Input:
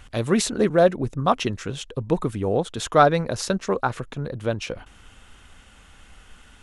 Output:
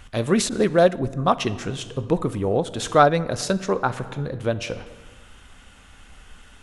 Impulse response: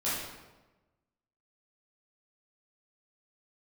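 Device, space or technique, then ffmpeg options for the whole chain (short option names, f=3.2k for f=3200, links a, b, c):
compressed reverb return: -filter_complex "[0:a]asplit=2[a][b];[1:a]atrim=start_sample=2205[c];[b][c]afir=irnorm=-1:irlink=0,acompressor=threshold=-16dB:ratio=6,volume=-15.5dB[d];[a][d]amix=inputs=2:normalize=0,asettb=1/sr,asplit=3[e][f][g];[e]atrim=end=0.494[h];[f]atrim=start=0.49:end=0.99,asetpts=PTS-STARTPTS,afade=t=in:d=0.004:c=qsin,afade=t=out:st=0.496:d=0.004:c=qsin,adynamicequalizer=threshold=0.02:dfrequency=2100:dqfactor=0.7:tfrequency=2100:tqfactor=0.7:attack=5:release=100:ratio=0.375:range=2:mode=boostabove:tftype=highshelf[i];[g]atrim=start=0.986[j];[h][i]acrossfade=d=0.004:c1=hsin:c2=qsin[k];[k][j]acrossfade=d=0.004:c1=qsin:c2=hsin"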